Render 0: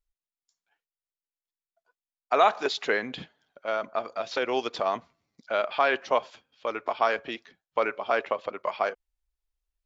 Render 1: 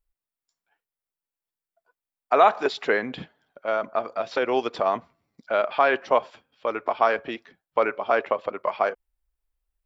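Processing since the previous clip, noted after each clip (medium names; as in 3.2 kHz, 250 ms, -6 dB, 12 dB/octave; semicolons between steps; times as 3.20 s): peaking EQ 4.6 kHz -7.5 dB 1.9 oct; band-stop 6.5 kHz, Q 8; trim +4.5 dB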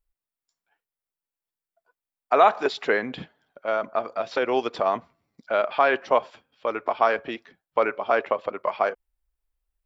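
no audible change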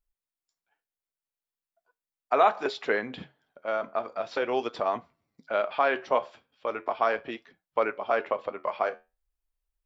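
flange 0.4 Hz, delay 7.5 ms, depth 5.3 ms, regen -73%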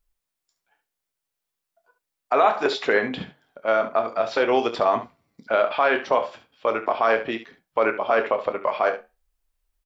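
peak limiter -17 dBFS, peak gain reduction 7.5 dB; on a send: early reflections 27 ms -11.5 dB, 70 ms -12 dB; on the sum: trim +8 dB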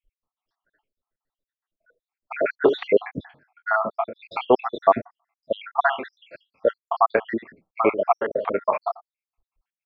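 random holes in the spectrogram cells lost 76%; distance through air 390 m; trim +7.5 dB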